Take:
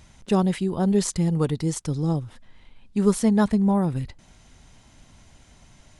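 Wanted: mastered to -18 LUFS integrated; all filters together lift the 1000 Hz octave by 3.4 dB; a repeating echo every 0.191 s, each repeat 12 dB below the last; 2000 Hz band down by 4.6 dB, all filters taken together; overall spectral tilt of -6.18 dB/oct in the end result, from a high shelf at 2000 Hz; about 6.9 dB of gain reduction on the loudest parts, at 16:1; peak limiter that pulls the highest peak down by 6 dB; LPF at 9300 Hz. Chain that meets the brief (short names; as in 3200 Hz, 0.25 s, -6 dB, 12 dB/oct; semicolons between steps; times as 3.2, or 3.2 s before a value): LPF 9300 Hz; bell 1000 Hz +6.5 dB; high shelf 2000 Hz -3.5 dB; bell 2000 Hz -7 dB; compressor 16:1, threshold -20 dBFS; limiter -19.5 dBFS; feedback echo 0.191 s, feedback 25%, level -12 dB; gain +10.5 dB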